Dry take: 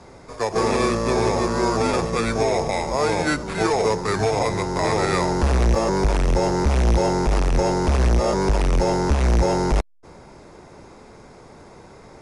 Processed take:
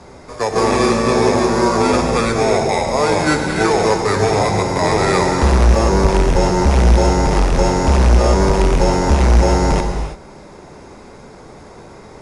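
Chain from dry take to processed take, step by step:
reverb whose tail is shaped and stops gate 360 ms flat, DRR 3.5 dB
level +4.5 dB

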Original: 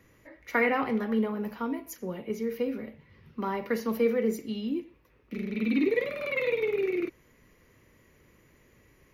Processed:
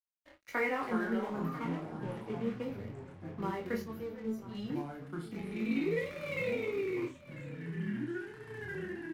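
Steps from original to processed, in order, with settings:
0:01.58–0:02.62: variable-slope delta modulation 16 kbit/s
in parallel at −1.5 dB: downward compressor, threshold −40 dBFS, peak gain reduction 18.5 dB
0:03.82–0:04.55: on the sum: tuned comb filter 220 Hz, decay 0.18 s, harmonics all, mix 90%
dead-zone distortion −44.5 dBFS
chorus effect 1.5 Hz, delay 19.5 ms, depth 3.2 ms
delay with pitch and tempo change per echo 183 ms, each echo −5 semitones, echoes 3, each echo −6 dB
double-tracking delay 35 ms −11 dB
single-tap delay 993 ms −16.5 dB
level −5 dB

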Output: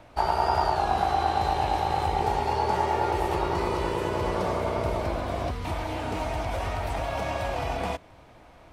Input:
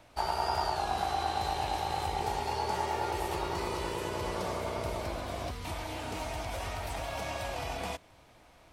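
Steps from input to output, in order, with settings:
high-shelf EQ 3,000 Hz −11 dB
level +8 dB

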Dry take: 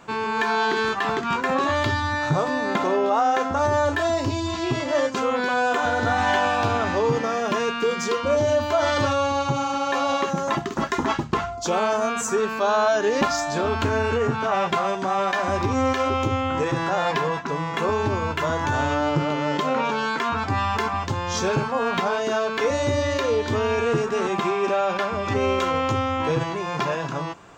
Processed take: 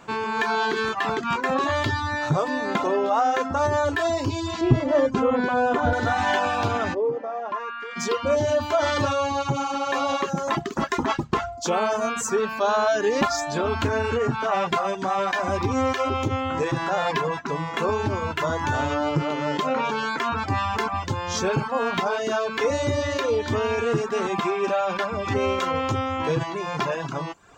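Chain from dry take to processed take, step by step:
reverb reduction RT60 0.59 s
0:04.61–0:05.93: spectral tilt −3.5 dB per octave
0:06.93–0:07.95: resonant band-pass 360 Hz → 1,900 Hz, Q 2.2

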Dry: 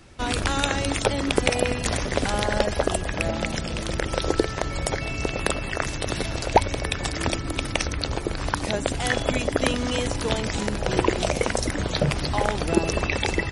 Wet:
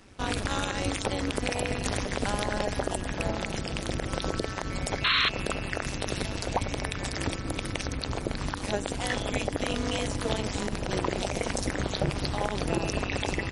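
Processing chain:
amplitude modulation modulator 200 Hz, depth 85%
sound drawn into the spectrogram noise, 0:05.04–0:05.29, 1,000–4,300 Hz −17 dBFS
brickwall limiter −14.5 dBFS, peak gain reduction 9.5 dB

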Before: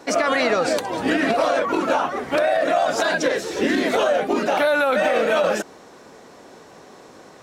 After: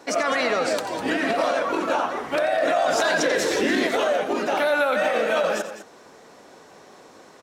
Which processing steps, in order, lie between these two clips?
low-shelf EQ 290 Hz −5 dB
loudspeakers that aren't time-aligned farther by 30 metres −12 dB, 70 metres −12 dB
0:02.63–0:03.87: envelope flattener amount 70%
level −2.5 dB

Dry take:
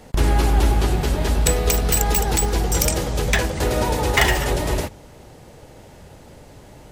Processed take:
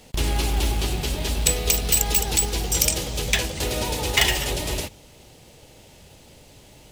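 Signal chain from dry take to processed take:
high shelf with overshoot 2,100 Hz +7.5 dB, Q 1.5
in parallel at −5.5 dB: log-companded quantiser 4 bits
on the sum: level −10 dB

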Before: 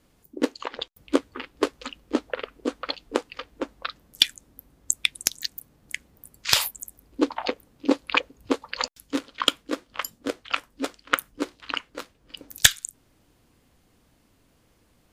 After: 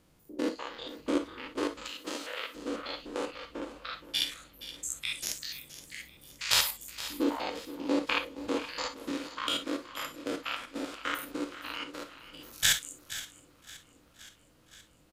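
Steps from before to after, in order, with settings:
spectrum averaged block by block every 100 ms
0:01.85–0:02.55: spectral tilt +4.5 dB per octave
on a send: single-tap delay 471 ms −14.5 dB
on the sum: reverb whose tail is shaped and stops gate 80 ms flat, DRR 6.5 dB
feedback echo with a swinging delay time 521 ms, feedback 71%, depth 64 cents, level −21 dB
level −1.5 dB

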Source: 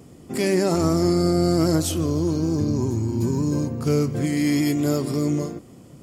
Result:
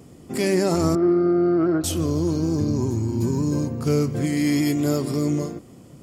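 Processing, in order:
0:00.95–0:01.84: loudspeaker in its box 220–2,300 Hz, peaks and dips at 240 Hz −8 dB, 360 Hz +6 dB, 520 Hz −9 dB, 920 Hz −9 dB, 1,400 Hz +4 dB, 2,100 Hz −7 dB

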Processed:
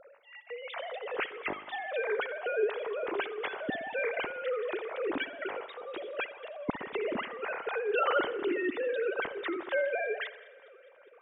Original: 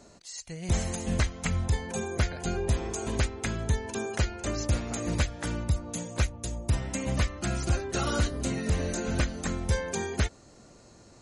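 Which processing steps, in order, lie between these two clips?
three sine waves on the formant tracks
delay with a high-pass on its return 205 ms, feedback 74%, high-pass 1,400 Hz, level −23 dB
spring reverb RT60 1 s, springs 59 ms, chirp 45 ms, DRR 12.5 dB
level −5 dB

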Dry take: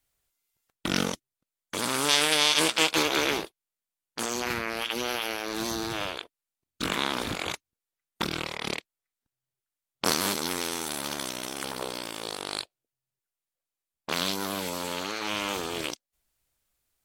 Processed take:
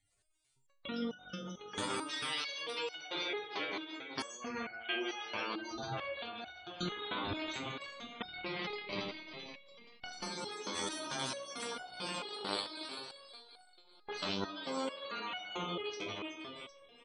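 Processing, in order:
feedback delay that plays each chunk backwards 192 ms, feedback 52%, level −11.5 dB
downward compressor 12 to 1, threshold −37 dBFS, peak gain reduction 19.5 dB
0:04.50–0:05.04: double-tracking delay 44 ms −4 dB
multi-tap delay 167/189/757 ms −8.5/−16.5/−12 dB
four-comb reverb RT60 0.47 s, combs from 25 ms, DRR 10.5 dB
downsampling to 22,050 Hz
0:14.54–0:15.04: low-shelf EQ 120 Hz −8.5 dB
gate on every frequency bin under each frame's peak −15 dB strong
step-sequenced resonator 4.5 Hz 100–740 Hz
level +15.5 dB

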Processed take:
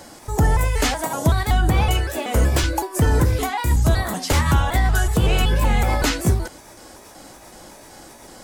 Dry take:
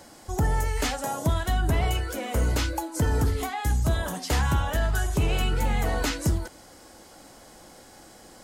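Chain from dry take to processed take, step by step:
pitch shifter gated in a rhythm +2.5 semitones, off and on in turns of 188 ms
level +7 dB

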